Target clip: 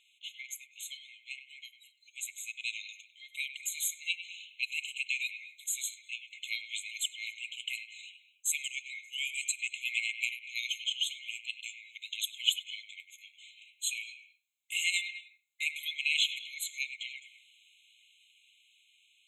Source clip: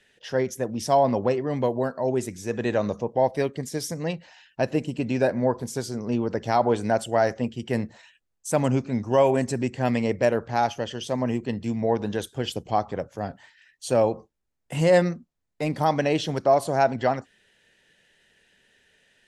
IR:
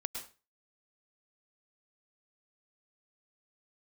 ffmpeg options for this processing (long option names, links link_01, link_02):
-filter_complex "[0:a]dynaudnorm=framelen=790:gausssize=7:maxgain=11.5dB,asplit=2[link_01][link_02];[1:a]atrim=start_sample=2205,lowpass=2900,adelay=99[link_03];[link_02][link_03]afir=irnorm=-1:irlink=0,volume=-8.5dB[link_04];[link_01][link_04]amix=inputs=2:normalize=0,afftfilt=real='re*eq(mod(floor(b*sr/1024/2100),2),1)':imag='im*eq(mod(floor(b*sr/1024/2100),2),1)':win_size=1024:overlap=0.75"